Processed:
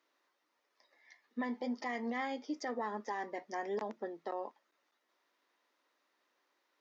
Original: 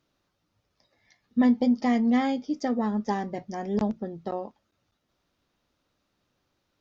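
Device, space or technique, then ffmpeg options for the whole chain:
laptop speaker: -af "highpass=f=320:w=0.5412,highpass=f=320:w=1.3066,equalizer=f=1000:t=o:w=0.39:g=7,equalizer=f=1900:t=o:w=0.47:g=9,alimiter=level_in=1.12:limit=0.0631:level=0:latency=1:release=73,volume=0.891,volume=0.631"

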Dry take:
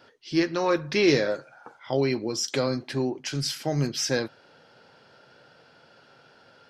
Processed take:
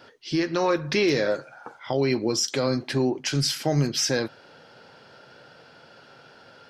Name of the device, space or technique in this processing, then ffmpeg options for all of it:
clipper into limiter: -af "asoftclip=type=hard:threshold=0.299,alimiter=limit=0.119:level=0:latency=1:release=140,volume=1.78"

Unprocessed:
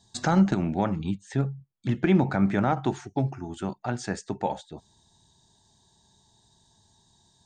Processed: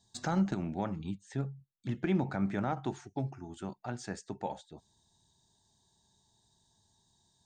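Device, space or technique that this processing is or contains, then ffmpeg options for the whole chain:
exciter from parts: -filter_complex "[0:a]asplit=2[s0][s1];[s1]highpass=3300,asoftclip=type=tanh:threshold=0.0178,volume=0.282[s2];[s0][s2]amix=inputs=2:normalize=0,volume=0.355"

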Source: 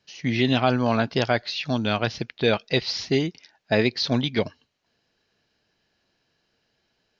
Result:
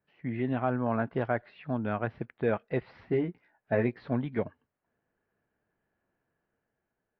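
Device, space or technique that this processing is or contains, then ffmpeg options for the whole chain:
action camera in a waterproof case: -filter_complex "[0:a]asettb=1/sr,asplit=3[s0][s1][s2];[s0]atrim=end=3.074[s3];[s1]atrim=start=3.07:end=4.08,asetpts=PTS-STARTPTS,afade=t=in:d=0.004:c=qsin,afade=t=out:st=1.006:d=0.004:c=qsin,asplit=2[s4][s5];[s5]adelay=17,volume=0.531[s6];[s4][s6]amix=inputs=2:normalize=0,atrim=end_sample=44541[s7];[s2]atrim=start=4.076[s8];[s3][s7]acrossfade=d=0.004:c1=hsin:c2=qsin[s9];[s9][s8]acrossfade=d=0.004:c1=qsin:c2=hsin,lowpass=f=1800:w=0.5412,lowpass=f=1800:w=1.3066,dynaudnorm=f=160:g=9:m=1.41,volume=0.355" -ar 22050 -c:a aac -b:a 48k

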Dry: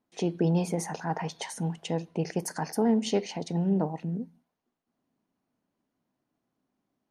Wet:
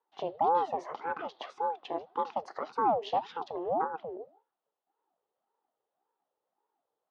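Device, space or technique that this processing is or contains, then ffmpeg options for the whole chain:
voice changer toy: -af "aeval=exprs='val(0)*sin(2*PI*440*n/s+440*0.6/1.8*sin(2*PI*1.8*n/s))':c=same,highpass=420,equalizer=f=800:t=q:w=4:g=6,equalizer=f=1600:t=q:w=4:g=-4,equalizer=f=2300:t=q:w=4:g=-10,lowpass=f=3600:w=0.5412,lowpass=f=3600:w=1.3066"

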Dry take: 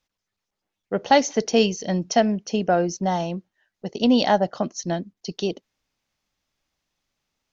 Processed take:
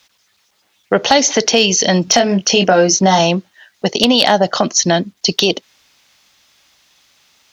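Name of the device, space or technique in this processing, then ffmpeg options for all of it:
mastering chain: -filter_complex "[0:a]asettb=1/sr,asplit=3[s0][s1][s2];[s0]atrim=end=2.054[s3];[s1]atrim=start=2.05:end=3.19,asetpts=PTS-STARTPTS,afade=t=in:d=0.004:c=qsin,afade=t=out:st=1.136:d=0.004:c=qsin,asplit=2[s4][s5];[s5]adelay=21,volume=0.562[s6];[s4][s6]amix=inputs=2:normalize=0,atrim=end_sample=50274[s7];[s2]atrim=start=3.186[s8];[s3][s7]acrossfade=d=0.004:c1=hsin:c2=qsin[s9];[s9][s8]acrossfade=d=0.004:c1=qsin:c2=hsin,highpass=55,equalizer=f=3600:t=o:w=0.65:g=3,acrossover=split=510|3900[s10][s11][s12];[s10]acompressor=threshold=0.0891:ratio=4[s13];[s11]acompressor=threshold=0.0501:ratio=4[s14];[s12]acompressor=threshold=0.0158:ratio=4[s15];[s13][s14][s15]amix=inputs=3:normalize=0,acompressor=threshold=0.0282:ratio=1.5,tiltshelf=f=660:g=-6,asoftclip=type=hard:threshold=0.141,alimiter=level_in=10.6:limit=0.891:release=50:level=0:latency=1,volume=0.891"

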